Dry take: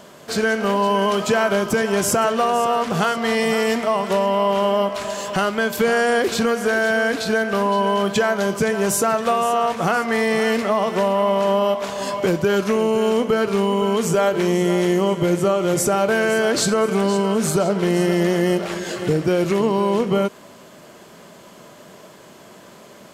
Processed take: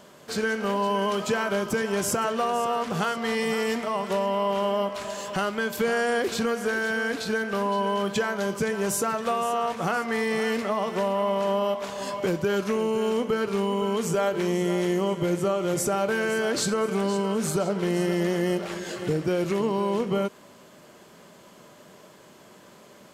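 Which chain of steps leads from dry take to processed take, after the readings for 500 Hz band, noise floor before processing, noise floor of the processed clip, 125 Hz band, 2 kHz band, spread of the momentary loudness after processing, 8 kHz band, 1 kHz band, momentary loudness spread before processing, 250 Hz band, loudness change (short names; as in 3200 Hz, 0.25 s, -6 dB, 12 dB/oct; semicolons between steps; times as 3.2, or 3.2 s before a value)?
-7.0 dB, -44 dBFS, -51 dBFS, -6.5 dB, -6.5 dB, 3 LU, -6.5 dB, -7.0 dB, 3 LU, -6.5 dB, -6.5 dB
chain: notch 670 Hz, Q 21; gain -6.5 dB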